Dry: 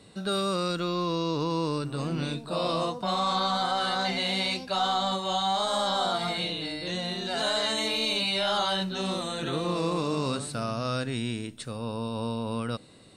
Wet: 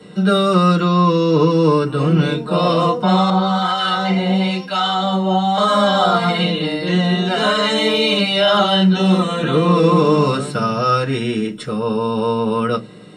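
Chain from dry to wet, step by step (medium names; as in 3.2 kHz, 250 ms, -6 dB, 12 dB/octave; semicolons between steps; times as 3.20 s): reverberation RT60 0.15 s, pre-delay 3 ms, DRR -4 dB; 3.30–5.58 s: harmonic tremolo 1 Hz, depth 70%, crossover 1.1 kHz; trim +2 dB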